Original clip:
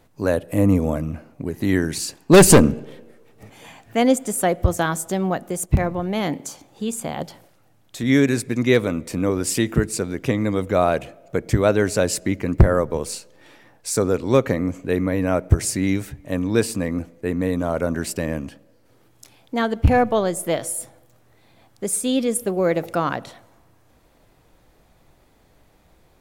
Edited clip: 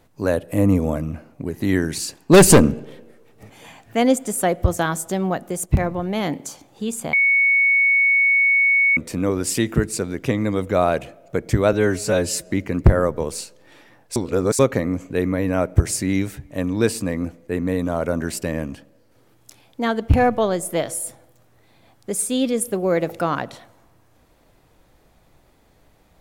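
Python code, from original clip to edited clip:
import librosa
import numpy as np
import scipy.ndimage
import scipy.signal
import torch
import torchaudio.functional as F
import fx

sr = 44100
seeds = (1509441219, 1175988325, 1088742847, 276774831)

y = fx.edit(x, sr, fx.bleep(start_s=7.13, length_s=1.84, hz=2220.0, db=-13.0),
    fx.stretch_span(start_s=11.73, length_s=0.52, factor=1.5),
    fx.reverse_span(start_s=13.9, length_s=0.43), tone=tone)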